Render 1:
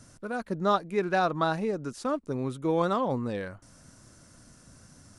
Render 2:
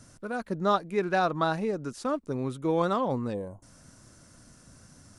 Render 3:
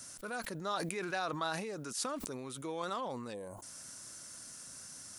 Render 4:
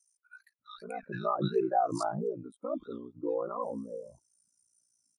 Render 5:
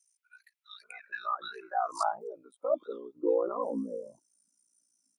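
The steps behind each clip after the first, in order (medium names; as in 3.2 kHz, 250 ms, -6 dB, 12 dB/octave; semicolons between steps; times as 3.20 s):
time-frequency box 3.34–3.63 s, 1.1–6.2 kHz -21 dB
compression 2.5:1, threshold -38 dBFS, peak gain reduction 12.5 dB; tilt EQ +3.5 dB/octave; decay stretcher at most 32 dB/s
ring modulator 29 Hz; bands offset in time highs, lows 590 ms, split 1.5 kHz; spectral contrast expander 2.5:1; trim +2.5 dB
high-pass sweep 2.3 kHz -> 250 Hz, 0.82–3.87 s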